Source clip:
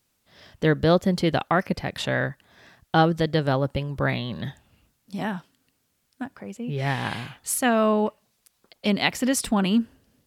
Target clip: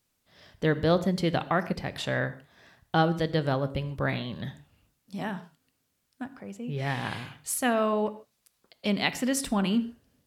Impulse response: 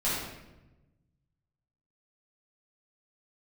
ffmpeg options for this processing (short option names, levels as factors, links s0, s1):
-filter_complex "[0:a]asplit=2[s0][s1];[1:a]atrim=start_sample=2205,afade=t=out:st=0.21:d=0.01,atrim=end_sample=9702[s2];[s1][s2]afir=irnorm=-1:irlink=0,volume=0.0891[s3];[s0][s3]amix=inputs=2:normalize=0,volume=0.562"